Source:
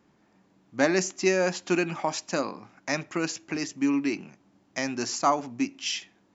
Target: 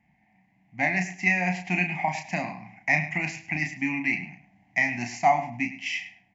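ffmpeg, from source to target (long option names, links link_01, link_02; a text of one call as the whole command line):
ffmpeg -i in.wav -filter_complex "[0:a]asplit=2[link_01][link_02];[link_02]adelay=33,volume=-6dB[link_03];[link_01][link_03]amix=inputs=2:normalize=0,asplit=2[link_04][link_05];[link_05]adelay=104,lowpass=frequency=4900:poles=1,volume=-12.5dB,asplit=2[link_06][link_07];[link_07]adelay=104,lowpass=frequency=4900:poles=1,volume=0.21,asplit=2[link_08][link_09];[link_09]adelay=104,lowpass=frequency=4900:poles=1,volume=0.21[link_10];[link_04][link_06][link_08][link_10]amix=inputs=4:normalize=0,dynaudnorm=framelen=220:gausssize=9:maxgain=5.5dB,firequalizer=gain_entry='entry(180,0);entry(450,-30);entry(730,4);entry(1300,-25);entry(2000,10);entry(3500,-15)':delay=0.05:min_phase=1" out.wav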